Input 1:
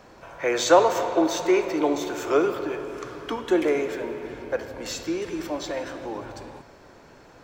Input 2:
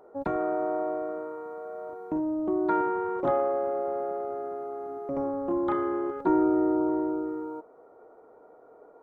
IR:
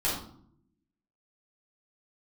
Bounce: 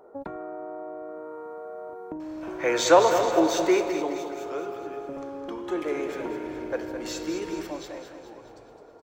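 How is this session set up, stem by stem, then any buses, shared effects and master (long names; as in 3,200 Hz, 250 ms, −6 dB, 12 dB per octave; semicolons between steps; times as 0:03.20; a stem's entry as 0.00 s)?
0:03.68 −0.5 dB → 0:04.30 −13 dB → 0:05.43 −13 dB → 0:06.19 −3.5 dB → 0:07.62 −3.5 dB → 0:08.12 −15 dB, 2.20 s, no send, echo send −9 dB, no processing
+1.5 dB, 0.00 s, no send, no echo send, downward compressor 12 to 1, threshold −35 dBFS, peak gain reduction 16.5 dB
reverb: not used
echo: repeating echo 211 ms, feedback 52%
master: no processing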